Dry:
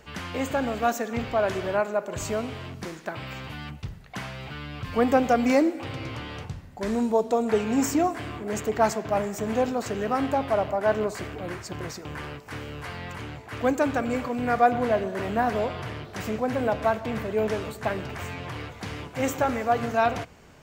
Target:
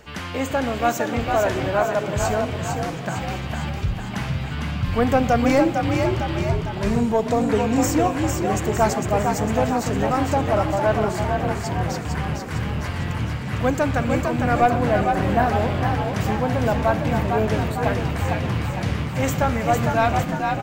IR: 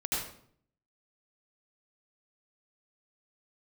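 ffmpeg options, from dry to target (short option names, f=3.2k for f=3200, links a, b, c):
-filter_complex "[0:a]acontrast=80,asubboost=boost=4.5:cutoff=130,asplit=9[a][b][c][d][e][f][g][h][i];[b]adelay=454,afreqshift=45,volume=-4.5dB[j];[c]adelay=908,afreqshift=90,volume=-9.5dB[k];[d]adelay=1362,afreqshift=135,volume=-14.6dB[l];[e]adelay=1816,afreqshift=180,volume=-19.6dB[m];[f]adelay=2270,afreqshift=225,volume=-24.6dB[n];[g]adelay=2724,afreqshift=270,volume=-29.7dB[o];[h]adelay=3178,afreqshift=315,volume=-34.7dB[p];[i]adelay=3632,afreqshift=360,volume=-39.8dB[q];[a][j][k][l][m][n][o][p][q]amix=inputs=9:normalize=0,volume=-3dB"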